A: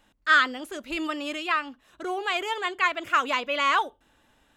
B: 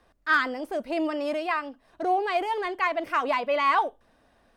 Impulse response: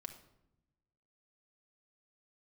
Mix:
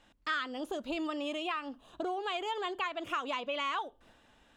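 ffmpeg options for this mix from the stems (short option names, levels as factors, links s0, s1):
-filter_complex "[0:a]lowpass=8300,volume=0.841[s0];[1:a]agate=range=0.0224:threshold=0.002:ratio=3:detection=peak,acompressor=threshold=0.0251:ratio=6,volume=1.19[s1];[s0][s1]amix=inputs=2:normalize=0,equalizer=f=3200:t=o:w=0.77:g=2,acompressor=threshold=0.0178:ratio=3"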